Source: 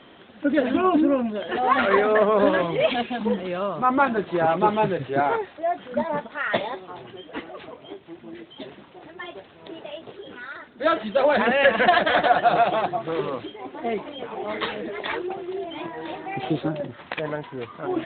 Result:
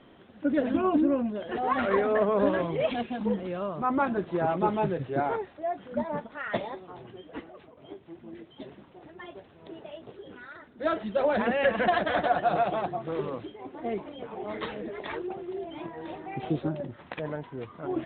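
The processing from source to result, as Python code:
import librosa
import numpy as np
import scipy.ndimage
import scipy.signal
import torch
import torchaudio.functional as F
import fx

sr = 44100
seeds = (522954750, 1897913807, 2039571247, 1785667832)

y = fx.edit(x, sr, fx.fade_out_to(start_s=7.31, length_s=0.46, floor_db=-10.0), tone=tone)
y = fx.tilt_eq(y, sr, slope=-2.0)
y = y * 10.0 ** (-7.5 / 20.0)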